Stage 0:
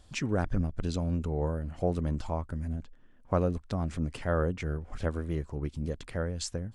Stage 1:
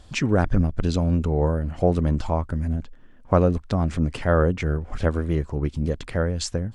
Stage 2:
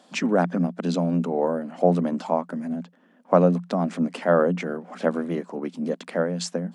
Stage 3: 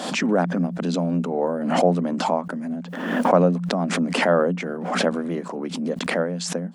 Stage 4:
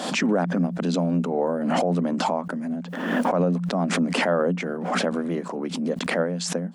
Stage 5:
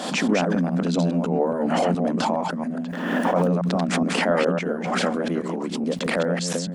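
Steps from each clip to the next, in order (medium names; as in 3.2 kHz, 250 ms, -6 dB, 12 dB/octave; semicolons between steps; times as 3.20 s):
treble shelf 8.8 kHz -8.5 dB; trim +9 dB
rippled Chebyshev high-pass 170 Hz, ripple 6 dB; trim +4 dB
swell ahead of each attack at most 47 dB/s
peak limiter -12.5 dBFS, peak gain reduction 10 dB
chunks repeated in reverse 139 ms, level -4 dB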